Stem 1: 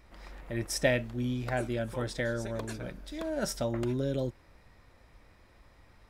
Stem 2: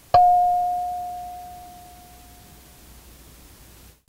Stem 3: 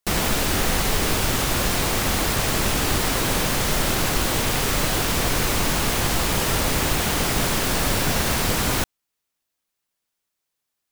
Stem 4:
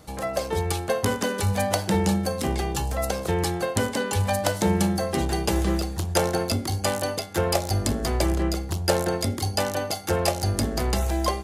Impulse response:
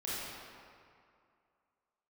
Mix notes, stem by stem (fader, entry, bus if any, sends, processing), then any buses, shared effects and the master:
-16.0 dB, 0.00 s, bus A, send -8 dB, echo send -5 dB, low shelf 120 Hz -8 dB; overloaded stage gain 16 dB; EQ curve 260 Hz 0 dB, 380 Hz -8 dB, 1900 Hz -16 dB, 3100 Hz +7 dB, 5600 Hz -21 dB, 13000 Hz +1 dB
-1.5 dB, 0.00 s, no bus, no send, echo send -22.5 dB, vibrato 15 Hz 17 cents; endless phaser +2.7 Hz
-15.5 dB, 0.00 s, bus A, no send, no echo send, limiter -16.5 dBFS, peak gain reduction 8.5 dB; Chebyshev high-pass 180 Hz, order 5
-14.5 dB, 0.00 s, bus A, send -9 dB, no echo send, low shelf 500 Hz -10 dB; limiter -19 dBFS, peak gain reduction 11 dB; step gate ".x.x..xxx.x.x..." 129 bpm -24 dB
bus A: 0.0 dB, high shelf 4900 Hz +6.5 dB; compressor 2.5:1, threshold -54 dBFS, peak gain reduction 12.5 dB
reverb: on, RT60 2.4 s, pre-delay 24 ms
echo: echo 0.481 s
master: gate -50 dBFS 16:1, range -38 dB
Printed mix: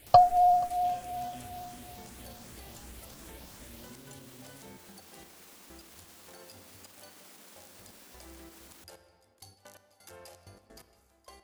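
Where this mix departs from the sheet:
stem 3 -15.5 dB -> -22.0 dB; stem 4: send -9 dB -> -17.5 dB; master: missing gate -50 dBFS 16:1, range -38 dB

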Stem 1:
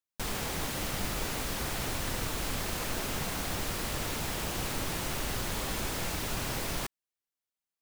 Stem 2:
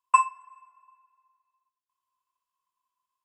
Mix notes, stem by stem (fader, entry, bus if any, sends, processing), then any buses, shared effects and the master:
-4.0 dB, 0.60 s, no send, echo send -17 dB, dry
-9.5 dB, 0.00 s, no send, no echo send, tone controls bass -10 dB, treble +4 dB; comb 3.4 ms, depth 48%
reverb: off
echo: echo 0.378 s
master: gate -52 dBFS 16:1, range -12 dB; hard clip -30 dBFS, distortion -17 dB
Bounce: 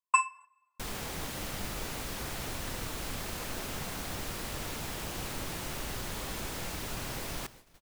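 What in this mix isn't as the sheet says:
stem 2 -9.5 dB -> -2.0 dB; master: missing hard clip -30 dBFS, distortion -17 dB

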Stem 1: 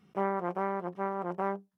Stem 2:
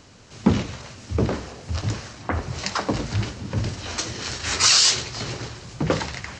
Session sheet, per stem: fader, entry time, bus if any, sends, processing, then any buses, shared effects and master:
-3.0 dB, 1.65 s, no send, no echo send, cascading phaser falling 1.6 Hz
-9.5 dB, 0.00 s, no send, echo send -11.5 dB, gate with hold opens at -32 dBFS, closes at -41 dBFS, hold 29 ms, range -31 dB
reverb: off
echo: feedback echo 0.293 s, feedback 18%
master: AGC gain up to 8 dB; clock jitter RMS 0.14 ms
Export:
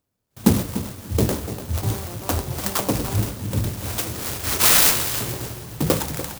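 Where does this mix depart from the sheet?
stem 2 -9.5 dB -> +2.0 dB; master: missing AGC gain up to 8 dB

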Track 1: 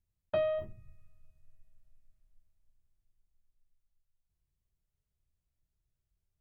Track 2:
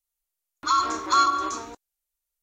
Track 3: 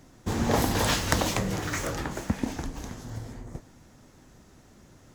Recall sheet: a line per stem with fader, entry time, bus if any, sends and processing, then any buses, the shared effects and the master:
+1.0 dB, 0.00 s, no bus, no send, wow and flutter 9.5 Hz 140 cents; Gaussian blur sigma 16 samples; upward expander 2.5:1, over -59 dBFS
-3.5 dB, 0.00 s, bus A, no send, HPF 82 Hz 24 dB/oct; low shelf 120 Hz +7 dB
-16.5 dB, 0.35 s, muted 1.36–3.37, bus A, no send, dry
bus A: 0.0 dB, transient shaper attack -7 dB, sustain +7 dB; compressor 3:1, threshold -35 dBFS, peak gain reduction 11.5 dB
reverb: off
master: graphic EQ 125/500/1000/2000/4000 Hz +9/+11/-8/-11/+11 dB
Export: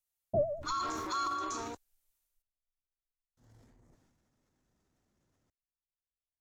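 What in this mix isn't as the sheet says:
stem 1 +1.0 dB -> +10.5 dB; stem 3 -16.5 dB -> -24.0 dB; master: missing graphic EQ 125/500/1000/2000/4000 Hz +9/+11/-8/-11/+11 dB

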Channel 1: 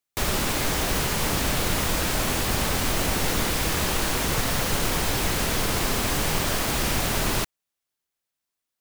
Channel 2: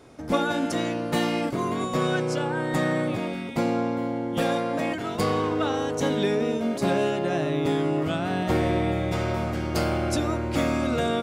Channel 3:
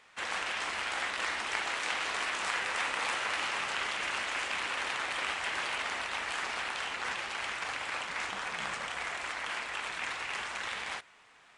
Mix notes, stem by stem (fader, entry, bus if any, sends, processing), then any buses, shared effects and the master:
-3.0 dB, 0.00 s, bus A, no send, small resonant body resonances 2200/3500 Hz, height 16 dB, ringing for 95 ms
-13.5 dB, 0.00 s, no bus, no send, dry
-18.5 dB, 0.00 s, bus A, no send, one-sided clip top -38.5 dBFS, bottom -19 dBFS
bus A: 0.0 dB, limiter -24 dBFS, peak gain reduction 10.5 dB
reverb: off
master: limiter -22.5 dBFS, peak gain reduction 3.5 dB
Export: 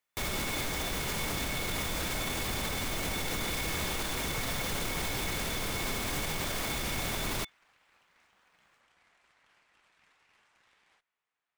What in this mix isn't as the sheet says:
stem 2: muted; stem 3 -18.5 dB -> -29.5 dB

